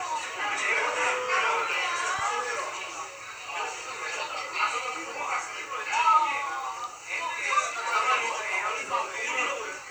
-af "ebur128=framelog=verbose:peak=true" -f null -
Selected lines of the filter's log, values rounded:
Integrated loudness:
  I:         -27.8 LUFS
  Threshold: -37.8 LUFS
Loudness range:
  LRA:         4.9 LU
  Threshold: -48.1 LUFS
  LRA low:   -31.4 LUFS
  LRA high:  -26.4 LUFS
True peak:
  Peak:      -10.5 dBFS